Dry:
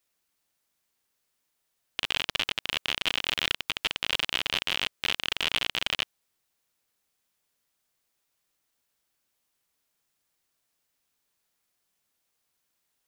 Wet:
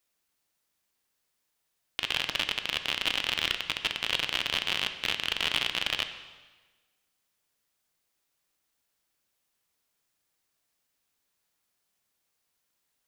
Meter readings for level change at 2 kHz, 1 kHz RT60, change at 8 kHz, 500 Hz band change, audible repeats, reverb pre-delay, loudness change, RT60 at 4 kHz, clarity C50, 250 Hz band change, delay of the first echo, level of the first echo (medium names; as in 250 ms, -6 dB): -0.5 dB, 1.3 s, -0.5 dB, -0.5 dB, no echo, 6 ms, -0.5 dB, 1.2 s, 10.0 dB, -0.5 dB, no echo, no echo